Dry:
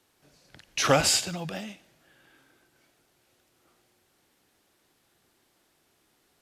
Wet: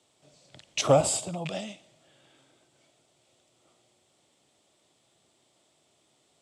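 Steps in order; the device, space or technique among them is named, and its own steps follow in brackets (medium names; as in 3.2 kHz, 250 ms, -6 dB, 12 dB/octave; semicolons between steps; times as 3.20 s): car door speaker with a rattle (rattle on loud lows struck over -32 dBFS, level -23 dBFS; cabinet simulation 82–9200 Hz, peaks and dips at 130 Hz +5 dB, 620 Hz +8 dB, 1.6 kHz -9 dB, 3.4 kHz +6 dB, 7.8 kHz +9 dB); 0.81–1.46 s: high-order bell 3.3 kHz -12 dB 2.5 oct; trim -1 dB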